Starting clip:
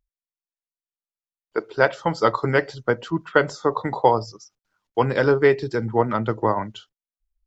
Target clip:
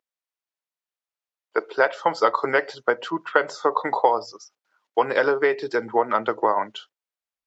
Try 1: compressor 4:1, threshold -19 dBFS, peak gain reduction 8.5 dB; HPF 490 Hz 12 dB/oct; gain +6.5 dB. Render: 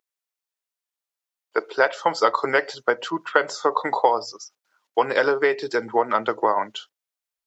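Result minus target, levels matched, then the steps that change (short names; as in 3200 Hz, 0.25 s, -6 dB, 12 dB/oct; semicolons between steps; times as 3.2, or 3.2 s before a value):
8000 Hz band +6.0 dB
add after HPF: high shelf 5100 Hz -10.5 dB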